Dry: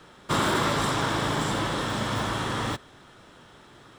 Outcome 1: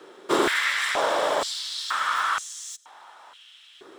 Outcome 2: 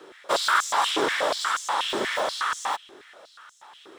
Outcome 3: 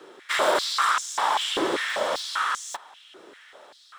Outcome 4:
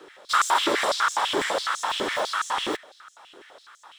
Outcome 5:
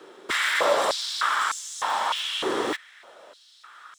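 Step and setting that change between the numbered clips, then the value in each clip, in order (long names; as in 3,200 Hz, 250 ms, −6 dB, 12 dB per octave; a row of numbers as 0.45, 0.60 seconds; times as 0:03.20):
high-pass on a step sequencer, speed: 2.1, 8.3, 5.1, 12, 3.3 Hertz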